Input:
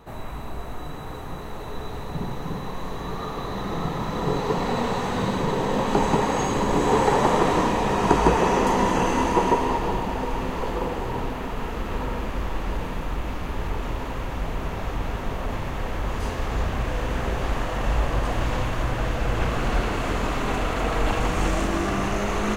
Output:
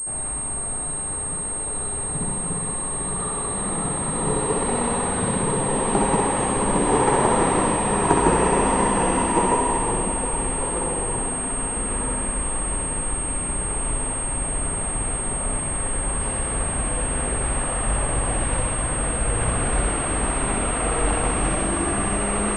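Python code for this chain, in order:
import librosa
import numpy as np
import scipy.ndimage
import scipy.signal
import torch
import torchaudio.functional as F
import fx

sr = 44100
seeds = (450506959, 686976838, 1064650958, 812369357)

y = fx.vibrato(x, sr, rate_hz=8.2, depth_cents=48.0)
y = fx.room_flutter(y, sr, wall_m=10.9, rt60_s=0.76)
y = fx.pwm(y, sr, carrier_hz=8500.0)
y = y * 10.0 ** (-1.0 / 20.0)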